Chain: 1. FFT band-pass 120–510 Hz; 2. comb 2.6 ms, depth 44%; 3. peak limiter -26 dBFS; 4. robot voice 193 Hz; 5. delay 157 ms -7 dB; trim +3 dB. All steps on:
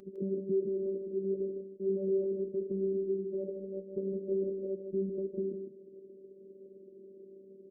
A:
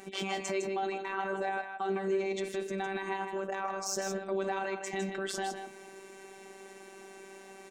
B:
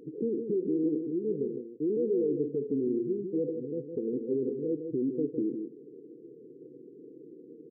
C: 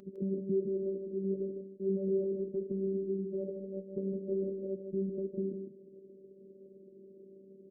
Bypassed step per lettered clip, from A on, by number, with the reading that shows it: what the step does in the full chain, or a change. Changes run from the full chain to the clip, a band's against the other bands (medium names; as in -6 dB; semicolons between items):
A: 1, crest factor change +6.0 dB; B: 4, loudness change +3.5 LU; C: 2, momentary loudness spread change +1 LU